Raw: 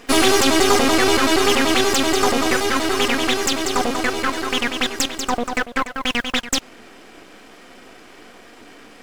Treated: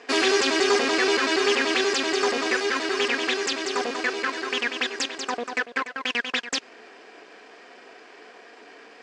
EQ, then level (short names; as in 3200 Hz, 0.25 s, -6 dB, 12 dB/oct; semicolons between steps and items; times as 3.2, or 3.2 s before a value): dynamic EQ 760 Hz, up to -7 dB, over -34 dBFS, Q 1.2; speaker cabinet 270–7400 Hz, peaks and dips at 430 Hz +9 dB, 700 Hz +6 dB, 1000 Hz +5 dB, 1700 Hz +8 dB, 2500 Hz +5 dB, 4700 Hz +5 dB; -7.5 dB